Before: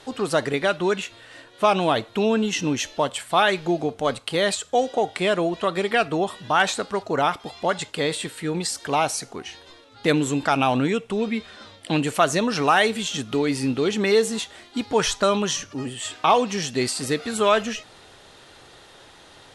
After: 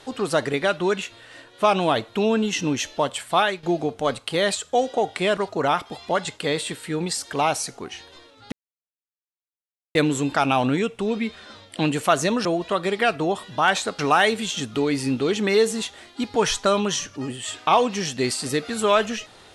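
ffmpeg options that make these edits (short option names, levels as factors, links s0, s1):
-filter_complex "[0:a]asplit=6[s0][s1][s2][s3][s4][s5];[s0]atrim=end=3.63,asetpts=PTS-STARTPTS,afade=t=out:st=3.37:d=0.26:silence=0.223872[s6];[s1]atrim=start=3.63:end=5.372,asetpts=PTS-STARTPTS,afade=t=in:d=0.004:c=hsin:silence=0.223872[s7];[s2]atrim=start=6.908:end=10.06,asetpts=PTS-STARTPTS,afade=t=out:st=3.148:d=0.004:c=hsin,apad=pad_dur=1.43[s8];[s3]atrim=start=10.06:end=12.562,asetpts=PTS-STARTPTS,afade=t=in:d=0.004:c=hsin[s9];[s4]atrim=start=5.368:end=6.912[s10];[s5]atrim=start=12.558[s11];[s6][s7]concat=n=2:v=0:a=1[s12];[s8][s9]concat=n=2:v=0:a=1[s13];[s12][s13]acrossfade=d=0.004:c1=hsin:c2=hsin[s14];[s14][s10]acrossfade=d=0.004:c1=hsin:c2=hsin[s15];[s15][s11]acrossfade=d=0.004:c1=hsin:c2=hsin"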